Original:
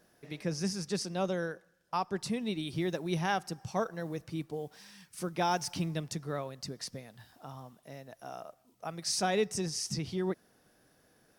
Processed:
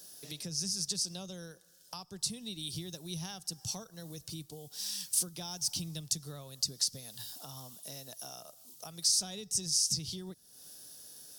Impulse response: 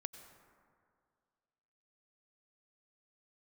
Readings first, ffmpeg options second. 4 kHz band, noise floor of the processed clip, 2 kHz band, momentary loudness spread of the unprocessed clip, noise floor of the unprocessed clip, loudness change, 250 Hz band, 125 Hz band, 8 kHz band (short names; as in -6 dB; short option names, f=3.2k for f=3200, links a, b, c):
+5.5 dB, -61 dBFS, -14.5 dB, 18 LU, -68 dBFS, +0.5 dB, -9.0 dB, -6.0 dB, +8.5 dB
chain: -filter_complex "[0:a]acrossover=split=140[a][b];[b]acompressor=threshold=-48dB:ratio=5[c];[a][c]amix=inputs=2:normalize=0,aexciter=amount=6.4:drive=7.9:freq=3.2k"